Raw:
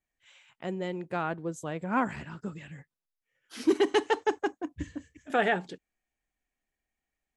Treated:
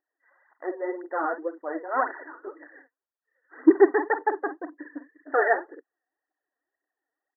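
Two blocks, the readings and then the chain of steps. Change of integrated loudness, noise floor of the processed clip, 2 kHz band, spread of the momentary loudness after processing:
+5.5 dB, under -85 dBFS, +4.0 dB, 21 LU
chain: doubler 47 ms -10 dB; phaser 1.9 Hz, delay 4.5 ms, feedback 62%; brick-wall FIR band-pass 270–2000 Hz; gain +2 dB

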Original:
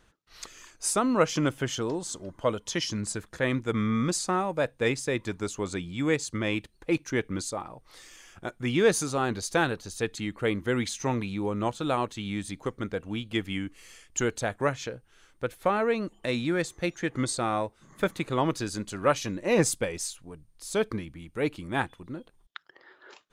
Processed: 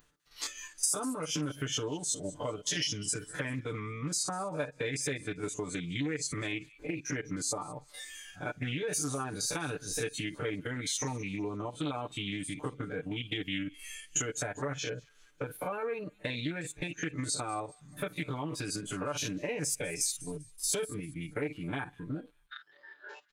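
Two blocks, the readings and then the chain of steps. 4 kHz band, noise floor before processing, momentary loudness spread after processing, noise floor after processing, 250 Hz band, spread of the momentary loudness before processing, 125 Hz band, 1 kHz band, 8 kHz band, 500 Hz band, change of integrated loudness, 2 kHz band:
-1.0 dB, -63 dBFS, 9 LU, -63 dBFS, -7.5 dB, 14 LU, -5.0 dB, -9.0 dB, +1.0 dB, -9.5 dB, -6.0 dB, -5.5 dB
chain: stepped spectrum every 50 ms; limiter -21 dBFS, peak gain reduction 10.5 dB; compressor 8:1, threshold -38 dBFS, peak gain reduction 13.5 dB; dynamic EQ 2800 Hz, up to +4 dB, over -59 dBFS, Q 0.8; on a send: thin delay 0.198 s, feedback 47%, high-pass 1600 Hz, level -13.5 dB; on the sum: upward compressor, threshold -56 dBFS; high shelf 5700 Hz +8.5 dB; comb 6.8 ms, depth 80%; spectral noise reduction 13 dB; Doppler distortion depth 0.17 ms; gain +3 dB

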